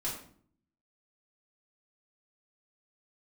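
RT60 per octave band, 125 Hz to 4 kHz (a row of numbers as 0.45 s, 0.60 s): 0.85 s, 0.80 s, 0.60 s, 0.50 s, 0.45 s, 0.40 s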